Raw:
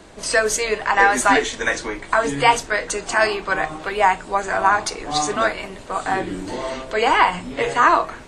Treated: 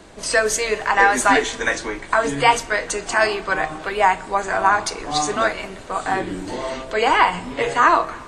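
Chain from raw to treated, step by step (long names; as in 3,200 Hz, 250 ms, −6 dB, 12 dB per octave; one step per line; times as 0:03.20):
four-comb reverb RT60 2.2 s, combs from 27 ms, DRR 20 dB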